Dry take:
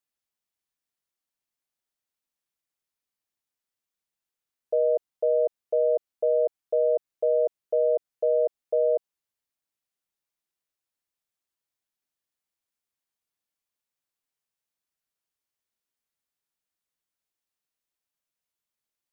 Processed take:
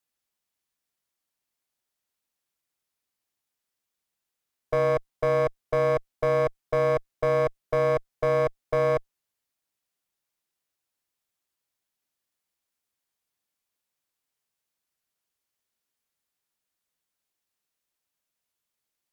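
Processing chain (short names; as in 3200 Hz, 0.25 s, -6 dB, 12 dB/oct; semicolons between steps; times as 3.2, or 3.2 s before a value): one-sided clip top -34 dBFS, bottom -18.5 dBFS; gain +4 dB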